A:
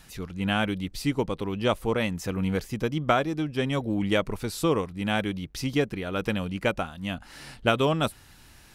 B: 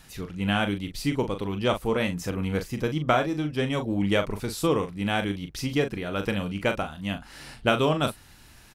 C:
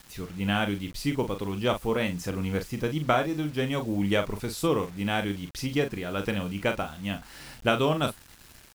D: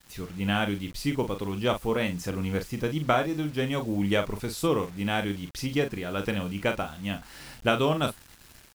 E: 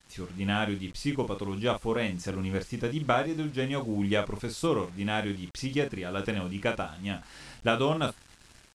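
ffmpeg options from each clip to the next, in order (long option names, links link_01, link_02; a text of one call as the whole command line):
ffmpeg -i in.wav -filter_complex "[0:a]asplit=2[link_01][link_02];[link_02]adelay=40,volume=-8dB[link_03];[link_01][link_03]amix=inputs=2:normalize=0" out.wav
ffmpeg -i in.wav -af "acrusher=bits=7:mix=0:aa=0.000001,volume=-1.5dB" out.wav
ffmpeg -i in.wav -af "agate=range=-33dB:threshold=-49dB:ratio=3:detection=peak" out.wav
ffmpeg -i in.wav -af "lowpass=frequency=9700:width=0.5412,lowpass=frequency=9700:width=1.3066,volume=-2dB" out.wav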